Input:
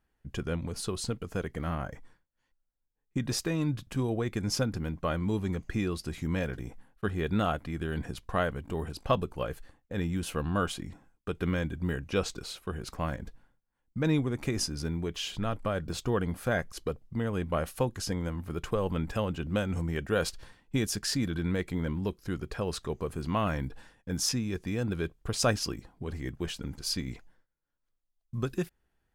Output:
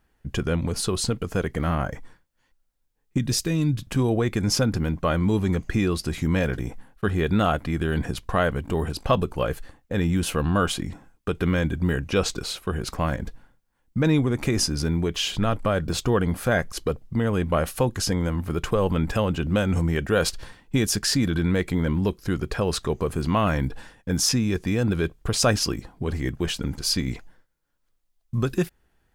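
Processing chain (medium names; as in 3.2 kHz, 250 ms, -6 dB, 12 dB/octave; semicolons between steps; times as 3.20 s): 3.18–3.82 s: peaking EQ 920 Hz -11.5 dB 2.4 oct; in parallel at +2 dB: peak limiter -24 dBFS, peak gain reduction 11 dB; on the sum: trim +2.5 dB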